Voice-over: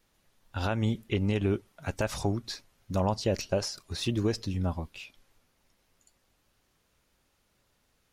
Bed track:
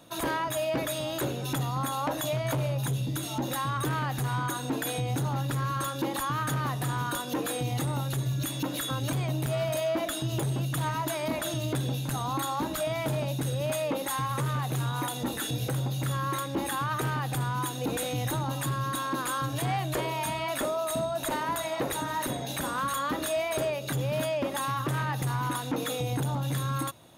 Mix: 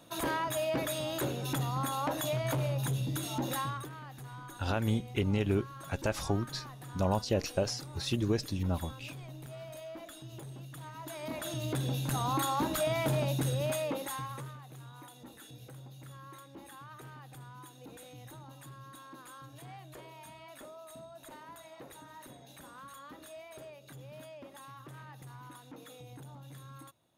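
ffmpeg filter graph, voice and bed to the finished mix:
-filter_complex "[0:a]adelay=4050,volume=-2dB[a];[1:a]volume=13dB,afade=t=out:st=3.59:d=0.29:silence=0.211349,afade=t=in:st=10.93:d=1.33:silence=0.158489,afade=t=out:st=13.38:d=1.2:silence=0.112202[b];[a][b]amix=inputs=2:normalize=0"

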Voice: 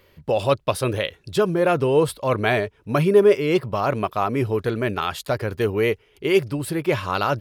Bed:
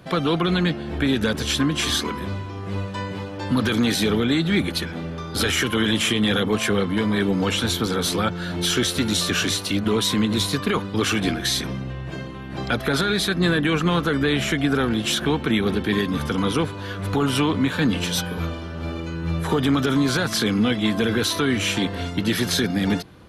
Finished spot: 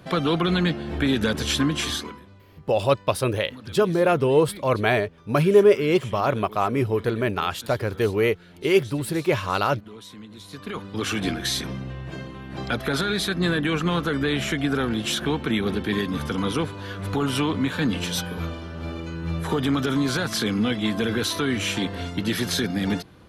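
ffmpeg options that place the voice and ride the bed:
-filter_complex "[0:a]adelay=2400,volume=-0.5dB[a];[1:a]volume=17.5dB,afade=t=out:st=1.68:d=0.58:silence=0.0944061,afade=t=in:st=10.43:d=0.84:silence=0.11885[b];[a][b]amix=inputs=2:normalize=0"

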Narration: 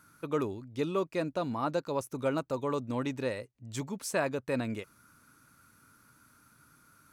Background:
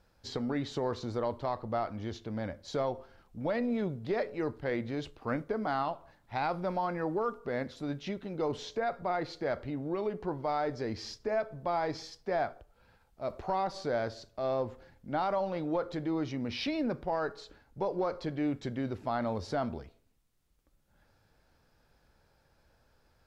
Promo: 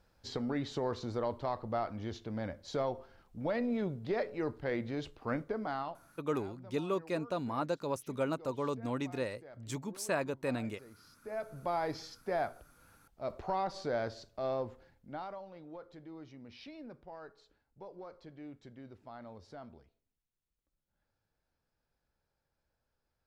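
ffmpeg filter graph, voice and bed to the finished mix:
-filter_complex "[0:a]adelay=5950,volume=-3dB[a];[1:a]volume=16dB,afade=t=out:st=5.38:d=0.96:silence=0.11885,afade=t=in:st=11.17:d=0.42:silence=0.125893,afade=t=out:st=14.41:d=1.02:silence=0.199526[b];[a][b]amix=inputs=2:normalize=0"

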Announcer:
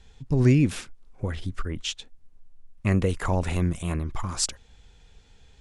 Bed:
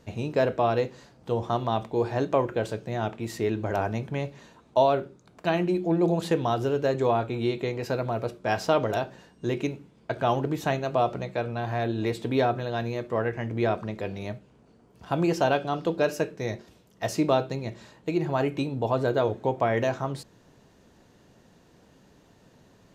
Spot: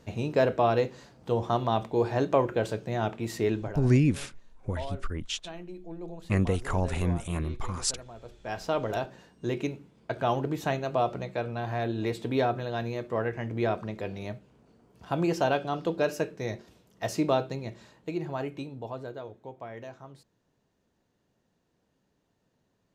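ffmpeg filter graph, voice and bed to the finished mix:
-filter_complex "[0:a]adelay=3450,volume=-3dB[a];[1:a]volume=15dB,afade=t=out:st=3.52:d=0.26:silence=0.133352,afade=t=in:st=8.22:d=0.83:silence=0.177828,afade=t=out:st=17.35:d=1.89:silence=0.188365[b];[a][b]amix=inputs=2:normalize=0"

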